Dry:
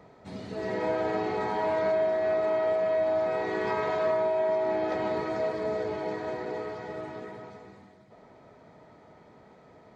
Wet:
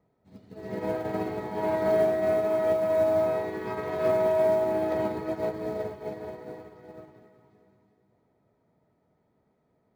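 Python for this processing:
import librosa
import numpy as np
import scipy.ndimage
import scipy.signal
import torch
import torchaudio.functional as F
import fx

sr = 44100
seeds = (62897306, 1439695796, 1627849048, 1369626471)

y = fx.low_shelf(x, sr, hz=410.0, db=9.5)
y = fx.quant_float(y, sr, bits=4)
y = fx.echo_feedback(y, sr, ms=368, feedback_pct=37, wet_db=-7.5)
y = fx.upward_expand(y, sr, threshold_db=-35.0, expansion=2.5)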